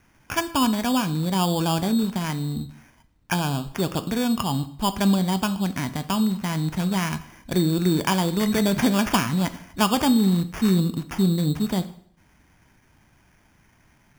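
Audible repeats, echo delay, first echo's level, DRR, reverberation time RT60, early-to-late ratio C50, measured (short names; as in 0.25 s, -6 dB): none, none, none, 10.5 dB, 0.60 s, 15.0 dB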